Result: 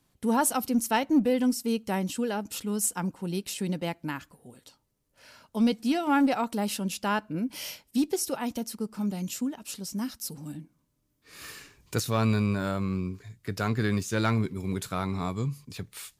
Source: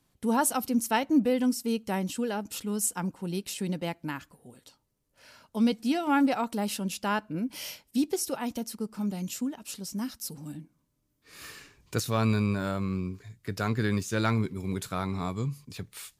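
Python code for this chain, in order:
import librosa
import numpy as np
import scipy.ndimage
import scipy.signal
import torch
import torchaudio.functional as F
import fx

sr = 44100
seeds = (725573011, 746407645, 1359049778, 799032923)

p1 = fx.clip_asym(x, sr, top_db=-23.0, bottom_db=-19.0)
p2 = x + (p1 * librosa.db_to_amplitude(-9.0))
p3 = fx.high_shelf(p2, sr, hz=7900.0, db=5.0, at=(11.48, 11.99))
y = p3 * librosa.db_to_amplitude(-1.5)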